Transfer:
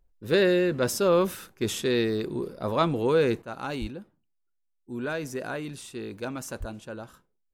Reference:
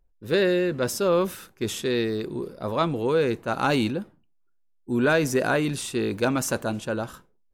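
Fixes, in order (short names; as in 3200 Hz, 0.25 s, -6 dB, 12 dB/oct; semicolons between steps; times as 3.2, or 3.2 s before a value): 3.42 gain correction +10.5 dB; 3.8–3.92 HPF 140 Hz 24 dB/oct; 6.59–6.71 HPF 140 Hz 24 dB/oct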